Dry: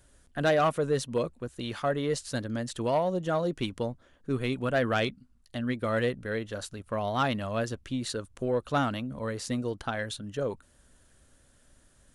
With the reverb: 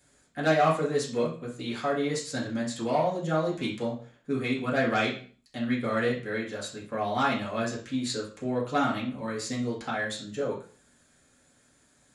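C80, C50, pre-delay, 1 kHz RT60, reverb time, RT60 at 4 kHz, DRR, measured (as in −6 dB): 12.5 dB, 7.5 dB, 3 ms, 0.40 s, 0.45 s, 0.35 s, −6.0 dB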